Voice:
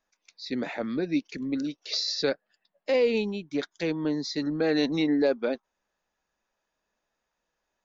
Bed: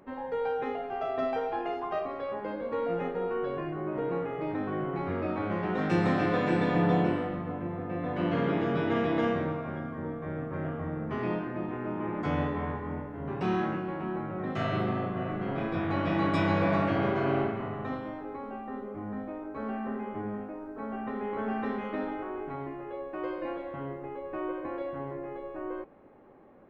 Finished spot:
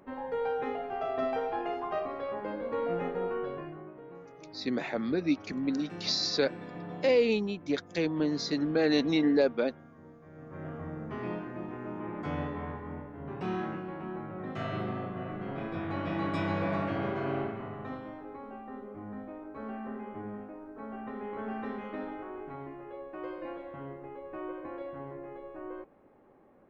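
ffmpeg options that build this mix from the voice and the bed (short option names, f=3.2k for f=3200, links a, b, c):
-filter_complex "[0:a]adelay=4150,volume=-1dB[a];[1:a]volume=10.5dB,afade=t=out:st=3.25:d=0.7:silence=0.16788,afade=t=in:st=10.32:d=0.44:silence=0.266073[b];[a][b]amix=inputs=2:normalize=0"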